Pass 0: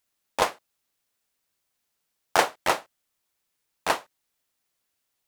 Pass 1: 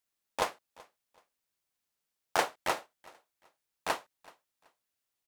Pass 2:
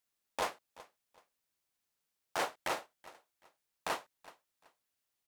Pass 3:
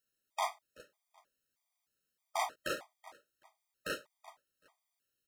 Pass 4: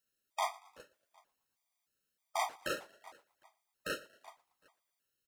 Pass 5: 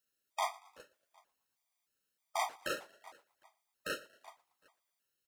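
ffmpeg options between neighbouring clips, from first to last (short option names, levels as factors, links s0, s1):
-af "aecho=1:1:379|758:0.0668|0.018,volume=0.422"
-af "alimiter=limit=0.0708:level=0:latency=1:release=12"
-af "afftfilt=real='re*gt(sin(2*PI*1.6*pts/sr)*(1-2*mod(floor(b*sr/1024/630),2)),0)':imag='im*gt(sin(2*PI*1.6*pts/sr)*(1-2*mod(floor(b*sr/1024/630),2)),0)':win_size=1024:overlap=0.75,volume=1.33"
-filter_complex "[0:a]asplit=4[s0][s1][s2][s3];[s1]adelay=116,afreqshift=30,volume=0.0794[s4];[s2]adelay=232,afreqshift=60,volume=0.038[s5];[s3]adelay=348,afreqshift=90,volume=0.0182[s6];[s0][s4][s5][s6]amix=inputs=4:normalize=0"
-af "lowshelf=f=260:g=-4"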